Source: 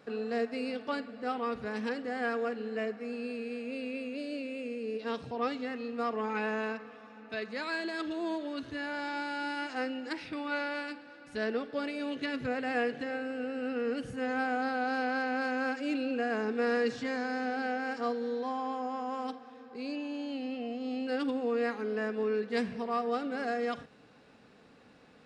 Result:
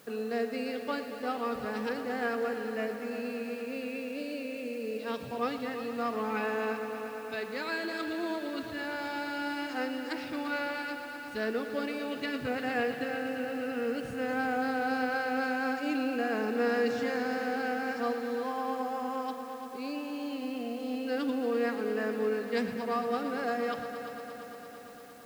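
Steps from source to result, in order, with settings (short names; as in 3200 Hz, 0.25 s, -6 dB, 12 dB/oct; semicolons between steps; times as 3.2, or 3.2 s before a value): multi-head echo 0.115 s, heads all three, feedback 75%, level -15 dB; requantised 10-bit, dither triangular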